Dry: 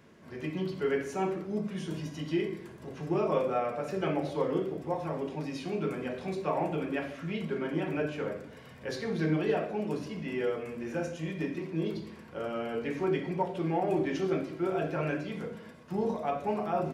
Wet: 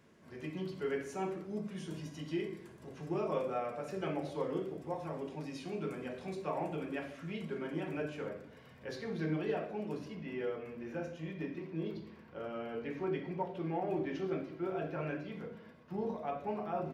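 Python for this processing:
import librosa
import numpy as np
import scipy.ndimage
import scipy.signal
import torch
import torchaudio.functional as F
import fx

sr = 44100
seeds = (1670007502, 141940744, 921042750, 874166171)

y = fx.peak_eq(x, sr, hz=8600.0, db=fx.steps((0.0, 3.0), (8.29, -4.5), (10.15, -12.5)), octaves=1.1)
y = y * 10.0 ** (-6.5 / 20.0)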